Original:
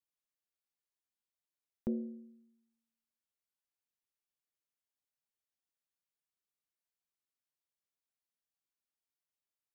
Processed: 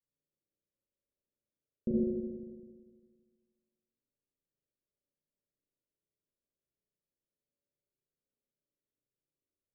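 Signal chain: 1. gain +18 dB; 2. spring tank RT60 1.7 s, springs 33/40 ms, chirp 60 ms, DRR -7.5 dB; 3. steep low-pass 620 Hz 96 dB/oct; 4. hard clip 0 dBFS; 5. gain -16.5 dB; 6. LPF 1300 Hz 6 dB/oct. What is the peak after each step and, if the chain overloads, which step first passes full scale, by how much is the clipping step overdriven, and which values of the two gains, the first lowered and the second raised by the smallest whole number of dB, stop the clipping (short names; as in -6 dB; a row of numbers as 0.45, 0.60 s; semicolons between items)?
-6.0, -3.5, -3.5, -3.5, -20.0, -20.0 dBFS; no overload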